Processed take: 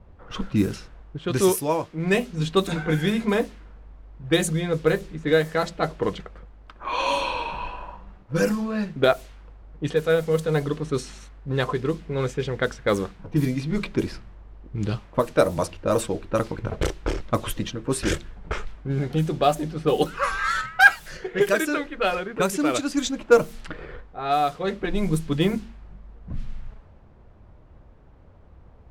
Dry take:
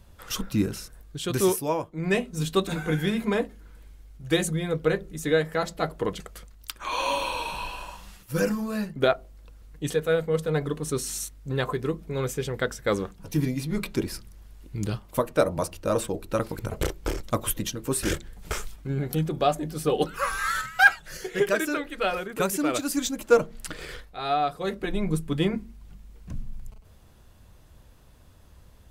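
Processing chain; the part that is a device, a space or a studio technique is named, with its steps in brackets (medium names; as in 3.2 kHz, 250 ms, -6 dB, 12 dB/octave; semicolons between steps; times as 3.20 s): cassette deck with a dynamic noise filter (white noise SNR 23 dB; level-controlled noise filter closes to 680 Hz, open at -20 dBFS); trim +3 dB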